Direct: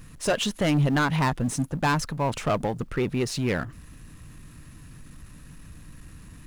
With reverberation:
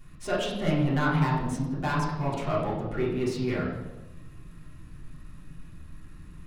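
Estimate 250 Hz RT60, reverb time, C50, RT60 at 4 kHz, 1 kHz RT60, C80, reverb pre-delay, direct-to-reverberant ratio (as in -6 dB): 1.2 s, 1.1 s, 3.0 dB, 0.90 s, 0.95 s, 5.5 dB, 3 ms, -7.5 dB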